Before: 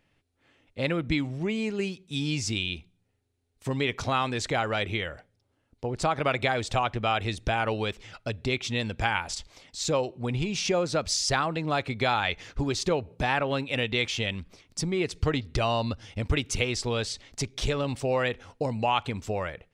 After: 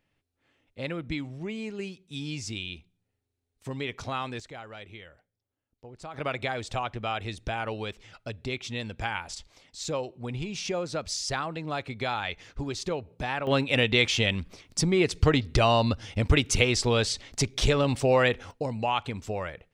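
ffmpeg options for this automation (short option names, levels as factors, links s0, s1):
-af "asetnsamples=n=441:p=0,asendcmd='4.4 volume volume -15.5dB;6.14 volume volume -5dB;13.47 volume volume 4.5dB;18.51 volume volume -2dB',volume=0.501"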